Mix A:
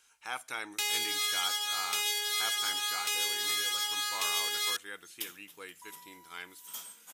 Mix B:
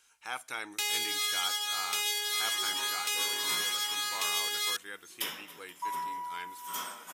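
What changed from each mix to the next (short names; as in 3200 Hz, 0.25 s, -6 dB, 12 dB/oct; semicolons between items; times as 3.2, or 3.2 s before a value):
reverb: on, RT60 0.60 s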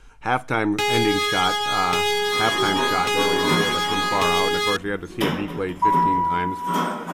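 master: remove differentiator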